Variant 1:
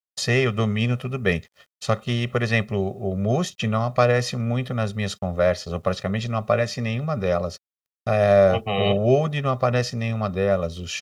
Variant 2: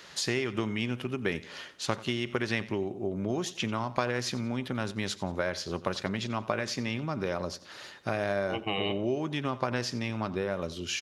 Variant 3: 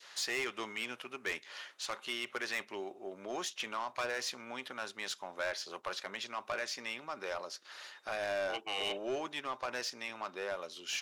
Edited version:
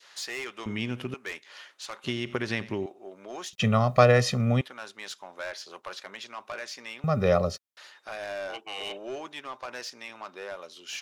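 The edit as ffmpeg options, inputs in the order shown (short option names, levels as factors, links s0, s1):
-filter_complex "[1:a]asplit=2[s0][s1];[0:a]asplit=2[s2][s3];[2:a]asplit=5[s4][s5][s6][s7][s8];[s4]atrim=end=0.662[s9];[s0]atrim=start=0.658:end=1.142[s10];[s5]atrim=start=1.138:end=2.042[s11];[s1]atrim=start=2.038:end=2.862[s12];[s6]atrim=start=2.858:end=3.532[s13];[s2]atrim=start=3.528:end=4.612[s14];[s7]atrim=start=4.608:end=7.042[s15];[s3]atrim=start=7.038:end=7.772[s16];[s8]atrim=start=7.768[s17];[s9][s10]acrossfade=d=0.004:c1=hsin:c2=hsin[s18];[s18][s11]acrossfade=d=0.004:c1=hsin:c2=hsin[s19];[s19][s12]acrossfade=d=0.004:c1=hsin:c2=hsin[s20];[s20][s13]acrossfade=d=0.004:c1=hsin:c2=hsin[s21];[s21][s14]acrossfade=d=0.004:c1=hsin:c2=hsin[s22];[s22][s15]acrossfade=d=0.004:c1=hsin:c2=hsin[s23];[s23][s16]acrossfade=d=0.004:c1=hsin:c2=hsin[s24];[s24][s17]acrossfade=d=0.004:c1=hsin:c2=hsin"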